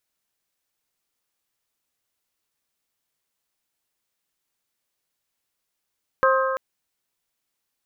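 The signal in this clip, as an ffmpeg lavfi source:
-f lavfi -i "aevalsrc='0.141*pow(10,-3*t/2.19)*sin(2*PI*529*t)+0.119*pow(10,-3*t/1.779)*sin(2*PI*1058*t)+0.1*pow(10,-3*t/1.684)*sin(2*PI*1269.6*t)+0.0841*pow(10,-3*t/1.575)*sin(2*PI*1587*t)':d=0.34:s=44100"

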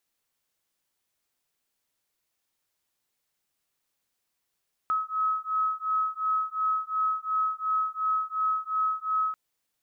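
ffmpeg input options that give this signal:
-f lavfi -i "aevalsrc='0.0398*(sin(2*PI*1280*t)+sin(2*PI*1282.8*t))':d=4.44:s=44100"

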